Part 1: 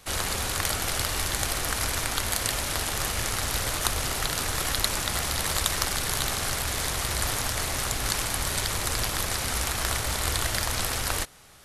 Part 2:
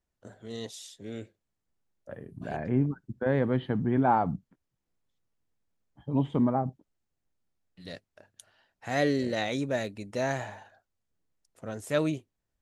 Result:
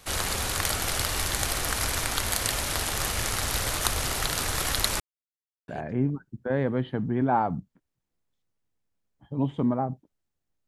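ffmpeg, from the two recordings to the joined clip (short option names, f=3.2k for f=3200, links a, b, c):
-filter_complex "[0:a]apad=whole_dur=10.67,atrim=end=10.67,asplit=2[a][b];[a]atrim=end=5,asetpts=PTS-STARTPTS,afade=t=out:st=4.996:d=0.004:c=hsin[c];[b]atrim=start=5:end=5.68,asetpts=PTS-STARTPTS,volume=0[d];[1:a]atrim=start=2.44:end=7.43,asetpts=PTS-STARTPTS,afade=t=in:d=0.004:c=hsin[e];[c][d][e]concat=n=3:v=0:a=1"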